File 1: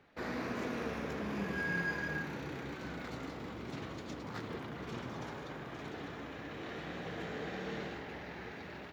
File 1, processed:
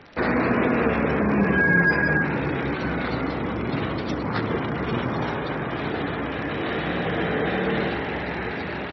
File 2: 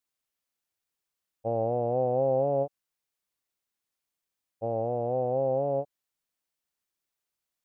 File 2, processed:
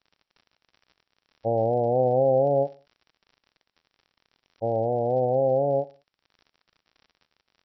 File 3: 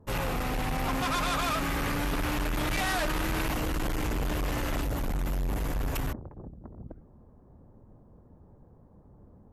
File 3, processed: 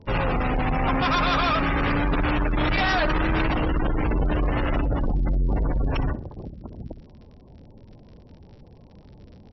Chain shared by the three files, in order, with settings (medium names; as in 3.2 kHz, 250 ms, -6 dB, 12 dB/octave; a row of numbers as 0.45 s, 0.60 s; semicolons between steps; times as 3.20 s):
spectral gate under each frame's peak -25 dB strong; crackle 66 per s -47 dBFS; brick-wall FIR low-pass 5.8 kHz; feedback delay 63 ms, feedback 37%, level -20 dB; normalise loudness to -24 LUFS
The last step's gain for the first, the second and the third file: +17.0 dB, +4.5 dB, +7.0 dB